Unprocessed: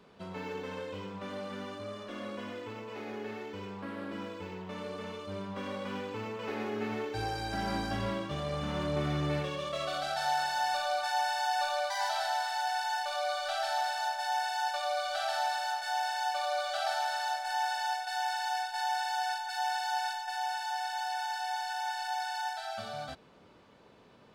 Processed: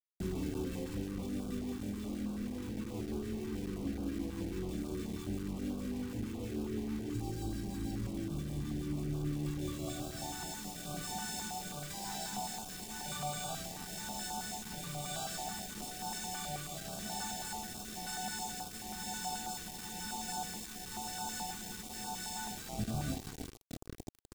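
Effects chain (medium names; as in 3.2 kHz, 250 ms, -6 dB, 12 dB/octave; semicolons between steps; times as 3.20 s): octave divider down 2 oct, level -5 dB; peak limiter -26 dBFS, peak gain reduction 6 dB; graphic EQ 250/500/2000/8000 Hz +10/-4/-10/+6 dB; echo whose repeats swap between lows and highs 305 ms, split 1.3 kHz, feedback 62%, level -10.5 dB; reverberation, pre-delay 3 ms, DRR 2 dB; compression 4:1, threshold -42 dBFS, peak gain reduction 12.5 dB; rotary cabinet horn 6.3 Hz, later 1 Hz, at 9.40 s; word length cut 8-bit, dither none; tilt shelf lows +6 dB, about 640 Hz; gain riding within 4 dB 2 s; comb 2.6 ms, depth 37%; step-sequenced notch 9.3 Hz 600–1900 Hz; trim +6.5 dB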